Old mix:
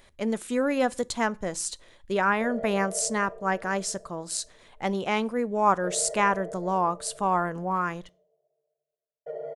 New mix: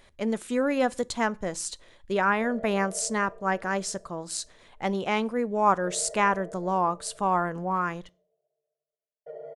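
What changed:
background −5.0 dB
master: add high-shelf EQ 9,400 Hz −5.5 dB

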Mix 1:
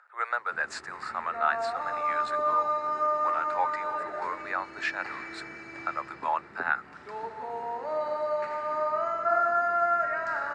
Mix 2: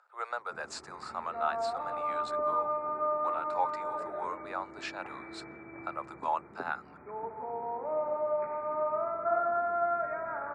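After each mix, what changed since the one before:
background: add linear-phase brick-wall low-pass 2,500 Hz
master: add parametric band 1,800 Hz −14 dB 0.87 octaves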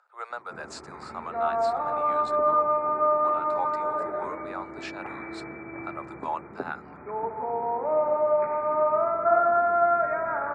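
background +8.0 dB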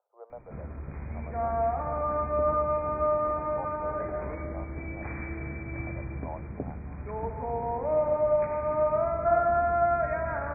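speech: add inverse Chebyshev low-pass filter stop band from 2,600 Hz, stop band 60 dB
master: remove loudspeaker in its box 240–7,600 Hz, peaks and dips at 380 Hz +6 dB, 860 Hz +6 dB, 1,300 Hz +8 dB, 3,200 Hz −10 dB, 6,000 Hz −10 dB

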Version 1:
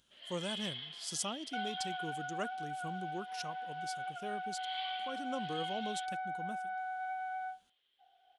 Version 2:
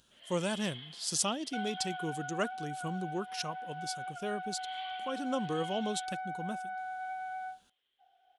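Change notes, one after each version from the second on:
speech +6.5 dB
first sound: add high-frequency loss of the air 180 metres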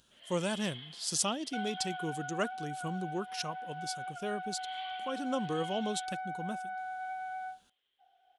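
nothing changed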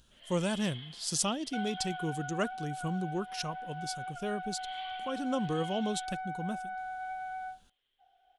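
master: remove high-pass filter 220 Hz 6 dB per octave

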